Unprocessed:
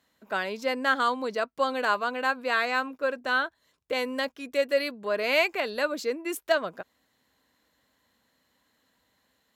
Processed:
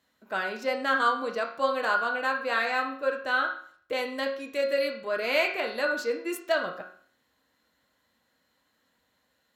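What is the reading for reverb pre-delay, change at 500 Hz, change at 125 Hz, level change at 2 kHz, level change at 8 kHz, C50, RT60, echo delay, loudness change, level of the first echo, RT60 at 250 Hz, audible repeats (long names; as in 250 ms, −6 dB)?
6 ms, −0.5 dB, can't be measured, 0.0 dB, −3.0 dB, 6.5 dB, 0.55 s, no echo audible, −0.5 dB, no echo audible, 0.55 s, no echo audible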